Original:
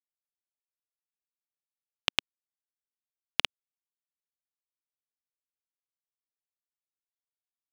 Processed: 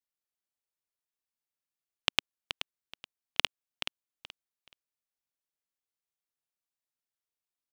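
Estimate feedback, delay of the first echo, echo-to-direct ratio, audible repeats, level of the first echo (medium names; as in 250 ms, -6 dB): 24%, 427 ms, -9.5 dB, 3, -10.0 dB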